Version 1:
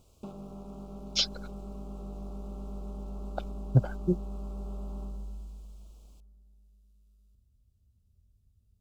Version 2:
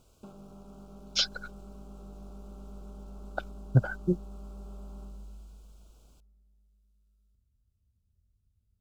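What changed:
background -6.0 dB; master: add peaking EQ 1.5 kHz +14 dB 0.24 oct

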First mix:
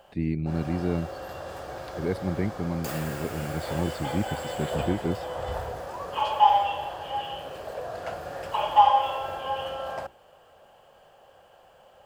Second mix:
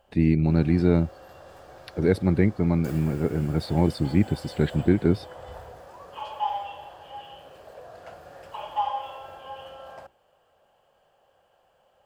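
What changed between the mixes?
speech +7.5 dB; background -9.5 dB

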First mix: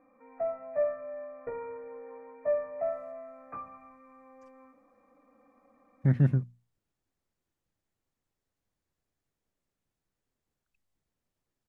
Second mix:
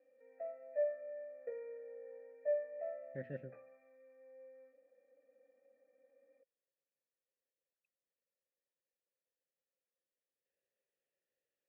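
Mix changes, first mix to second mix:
speech: entry -2.90 s; master: add vowel filter e

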